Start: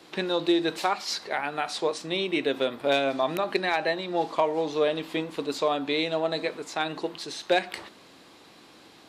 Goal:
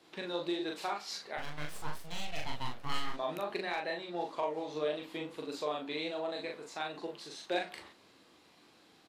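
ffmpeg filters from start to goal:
ffmpeg -i in.wav -filter_complex "[0:a]asplit=3[link_01][link_02][link_03];[link_01]afade=type=out:start_time=1.37:duration=0.02[link_04];[link_02]aeval=exprs='abs(val(0))':channel_layout=same,afade=type=in:start_time=1.37:duration=0.02,afade=type=out:start_time=3.12:duration=0.02[link_05];[link_03]afade=type=in:start_time=3.12:duration=0.02[link_06];[link_04][link_05][link_06]amix=inputs=3:normalize=0,flanger=delay=7.8:depth=7.1:regen=66:speed=1.6:shape=triangular,asplit=2[link_07][link_08];[link_08]adelay=40,volume=-3dB[link_09];[link_07][link_09]amix=inputs=2:normalize=0,volume=-7.5dB" out.wav

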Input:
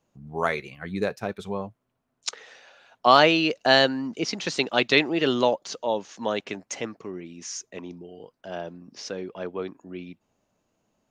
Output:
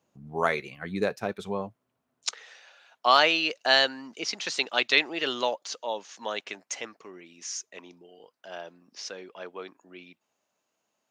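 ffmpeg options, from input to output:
ffmpeg -i in.wav -af "asetnsamples=nb_out_samples=441:pad=0,asendcmd='2.32 highpass f 1100',highpass=frequency=140:poles=1" out.wav

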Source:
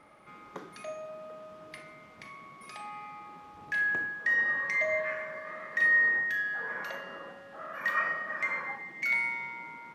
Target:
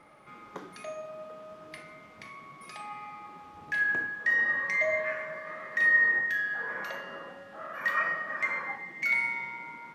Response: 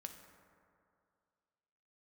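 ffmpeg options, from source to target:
-af "flanger=delay=5.7:depth=9.8:regen=73:speed=0.37:shape=triangular,volume=5.5dB"

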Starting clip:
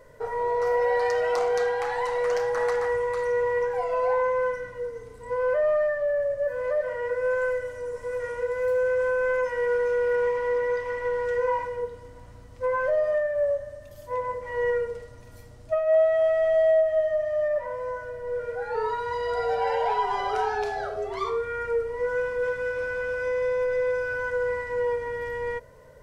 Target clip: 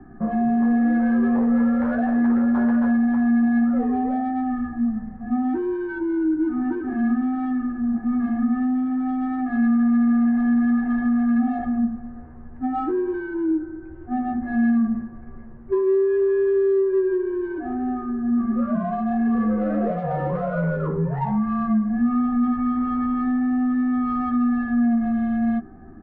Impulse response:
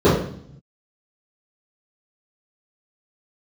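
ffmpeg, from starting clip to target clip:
-filter_complex "[0:a]highpass=frequency=170:width_type=q:width=0.5412,highpass=frequency=170:width_type=q:width=1.307,lowpass=frequency=2100:width_type=q:width=0.5176,lowpass=frequency=2100:width_type=q:width=0.7071,lowpass=frequency=2100:width_type=q:width=1.932,afreqshift=-250,acrossover=split=170[link_01][link_02];[link_01]alimiter=level_in=17dB:limit=-24dB:level=0:latency=1,volume=-17dB[link_03];[link_03][link_02]amix=inputs=2:normalize=0,acompressor=threshold=-25dB:ratio=6,asplit=2[link_04][link_05];[link_05]asoftclip=type=tanh:threshold=-32.5dB,volume=-7dB[link_06];[link_04][link_06]amix=inputs=2:normalize=0,aemphasis=mode=reproduction:type=bsi,asplit=2[link_07][link_08];[link_08]adelay=13,volume=-4.5dB[link_09];[link_07][link_09]amix=inputs=2:normalize=0"

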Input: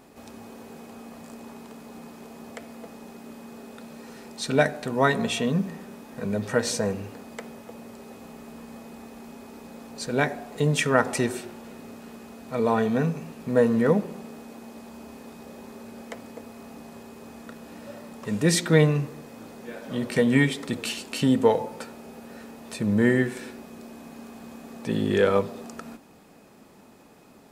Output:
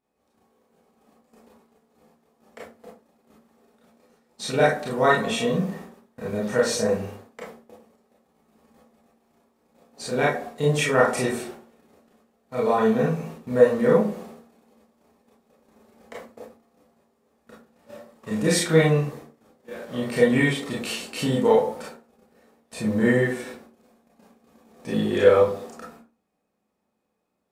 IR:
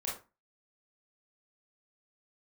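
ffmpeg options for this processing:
-filter_complex "[0:a]agate=range=-26dB:threshold=-39dB:ratio=16:detection=peak[link_01];[1:a]atrim=start_sample=2205[link_02];[link_01][link_02]afir=irnorm=-1:irlink=0"

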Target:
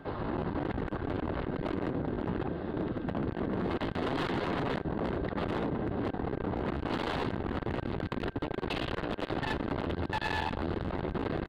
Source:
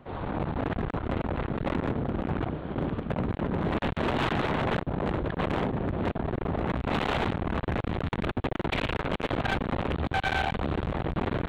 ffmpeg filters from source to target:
ffmpeg -i in.wav -filter_complex "[0:a]equalizer=frequency=300:width_type=o:width=0.97:gain=5,bandreject=frequency=2100:width=13,alimiter=level_in=2.5dB:limit=-24dB:level=0:latency=1:release=169,volume=-2.5dB,aeval=exprs='val(0)+0.00126*sin(2*PI*1400*n/s)':channel_layout=same,asetrate=49501,aresample=44100,atempo=0.890899,asplit=2[link_01][link_02];[link_02]adelay=85,lowpass=frequency=4300:poles=1,volume=-23dB,asplit=2[link_03][link_04];[link_04]adelay=85,lowpass=frequency=4300:poles=1,volume=0.52,asplit=2[link_05][link_06];[link_06]adelay=85,lowpass=frequency=4300:poles=1,volume=0.52[link_07];[link_01][link_03][link_05][link_07]amix=inputs=4:normalize=0,volume=1dB" out.wav

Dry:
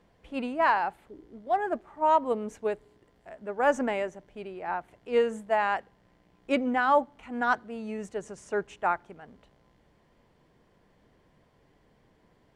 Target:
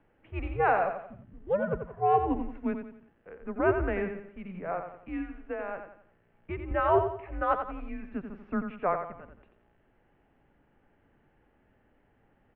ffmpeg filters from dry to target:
ffmpeg -i in.wav -filter_complex "[0:a]asettb=1/sr,asplit=3[link_01][link_02][link_03];[link_01]atrim=end=4.944[link_04];[link_02]atrim=start=4.94:end=6.71,asetpts=PTS-STARTPTS,afade=type=in:duration=0.004:curve=qsin,afade=type=out:start_time=1.766:duration=0.004:curve=qsin,acrossover=split=340|1600[link_05][link_06][link_07];[link_05]acompressor=threshold=-44dB:ratio=4[link_08];[link_06]acompressor=threshold=-35dB:ratio=4[link_09];[link_07]acompressor=threshold=-46dB:ratio=4[link_10];[link_08][link_09][link_10]amix=inputs=3:normalize=0[link_11];[link_03]atrim=start=6.706[link_12];[link_04][link_11]acrossfade=duration=0.004:curve1=hsin:curve2=qsin[link_13];[link_13][link_12]acrossfade=duration=0.004:curve1=qsin:curve2=hsin,highpass=frequency=160:width_type=q:width=0.5412,highpass=frequency=160:width_type=q:width=1.307,lowpass=frequency=2900:width_type=q:width=0.5176,lowpass=frequency=2900:width_type=q:width=0.7071,lowpass=frequency=2900:width_type=q:width=1.932,afreqshift=-190,aecho=1:1:88|176|264|352:0.422|0.164|0.0641|0.025,volume=-1.5dB" out.wav

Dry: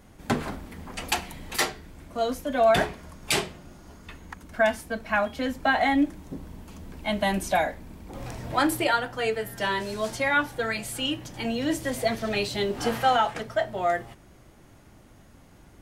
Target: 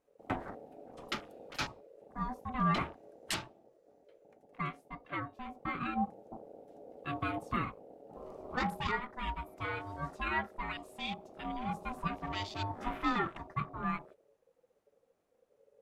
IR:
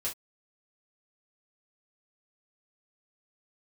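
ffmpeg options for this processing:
-filter_complex "[0:a]afwtdn=0.0178,asplit=3[link_01][link_02][link_03];[link_01]afade=type=out:start_time=3.35:duration=0.02[link_04];[link_02]flanger=delay=6.9:depth=3.3:regen=68:speed=1.4:shape=triangular,afade=type=in:start_time=3.35:duration=0.02,afade=type=out:start_time=5.96:duration=0.02[link_05];[link_03]afade=type=in:start_time=5.96:duration=0.02[link_06];[link_04][link_05][link_06]amix=inputs=3:normalize=0,aeval=exprs='val(0)*sin(2*PI*500*n/s)':channel_layout=same,volume=-7.5dB"

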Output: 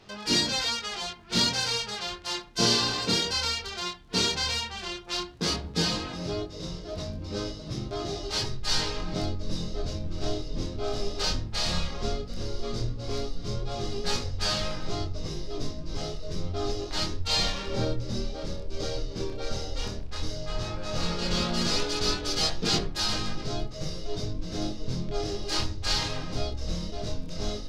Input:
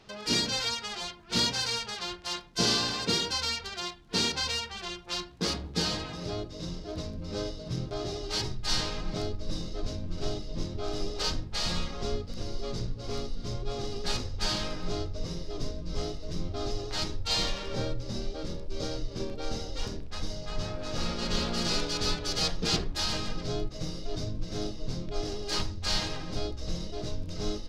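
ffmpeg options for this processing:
ffmpeg -i in.wav -af "flanger=delay=20:depth=7.6:speed=0.13,volume=5.5dB" out.wav

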